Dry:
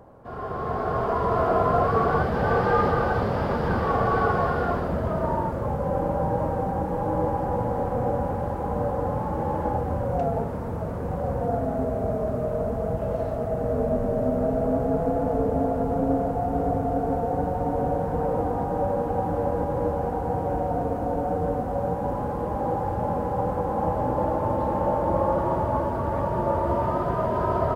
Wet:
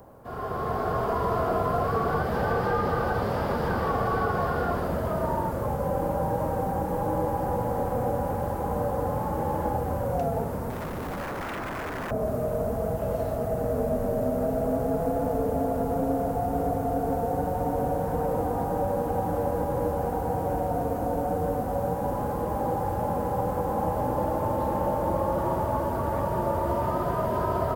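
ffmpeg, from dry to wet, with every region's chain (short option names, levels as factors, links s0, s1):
-filter_complex "[0:a]asettb=1/sr,asplit=3[s0][s1][s2];[s0]atrim=end=10.704[s3];[s1]atrim=start=10.7:end=12.11,asetpts=PTS-STARTPTS,afade=t=in:d=0.004:c=qsin,afade=t=out:st=1.406:d=0.004:c=qsin,equalizer=f=250:w=1.5:g=5,aeval=exprs='0.0422*(abs(mod(val(0)/0.0422+3,4)-2)-1)':c=same[s4];[s2]atrim=start=12.106[s5];[s3][s4]acrossfade=d=0.004:c1=hsin:c2=qsin[s6];[s6][s5]acrossfade=d=0.004:c1=qsin:c2=hsin,aemphasis=mode=production:type=50fm,acrossover=split=350|2000[s7][s8][s9];[s7]acompressor=threshold=0.0398:ratio=4[s10];[s8]acompressor=threshold=0.0562:ratio=4[s11];[s9]acompressor=threshold=0.00562:ratio=4[s12];[s10][s11][s12]amix=inputs=3:normalize=0"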